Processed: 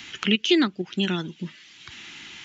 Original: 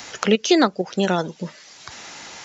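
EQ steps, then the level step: FFT filter 350 Hz 0 dB, 520 Hz -19 dB, 3.1 kHz +7 dB, 4.9 kHz -8 dB; -2.5 dB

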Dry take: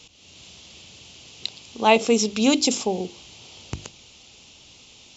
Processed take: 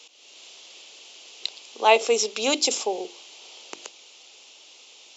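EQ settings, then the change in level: high-pass 380 Hz 24 dB/octave; 0.0 dB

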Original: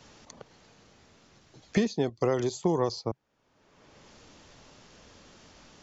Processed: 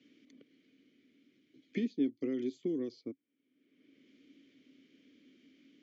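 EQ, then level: vowel filter i; high-pass 91 Hz; peaking EQ 390 Hz +7 dB 1.3 oct; 0.0 dB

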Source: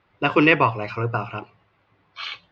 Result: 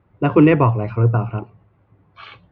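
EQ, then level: high-pass 65 Hz; tilt EQ -4 dB/octave; treble shelf 3.5 kHz -10 dB; 0.0 dB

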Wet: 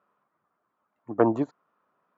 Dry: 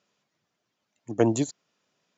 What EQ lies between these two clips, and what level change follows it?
resonant low-pass 1.2 kHz, resonance Q 3.8; peaking EQ 120 Hz -6 dB 1.1 oct; 0.0 dB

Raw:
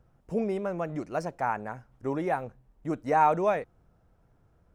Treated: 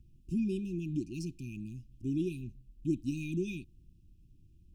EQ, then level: brick-wall FIR band-stop 380–2400 Hz; bass shelf 66 Hz +9 dB; 0.0 dB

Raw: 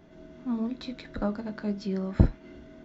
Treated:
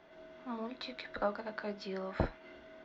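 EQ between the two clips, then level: three-band isolator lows -18 dB, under 480 Hz, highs -20 dB, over 5 kHz; +2.0 dB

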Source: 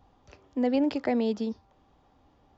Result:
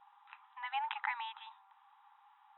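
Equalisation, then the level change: brick-wall FIR band-pass 790–4000 Hz; distance through air 74 m; treble shelf 2 kHz -12 dB; +9.0 dB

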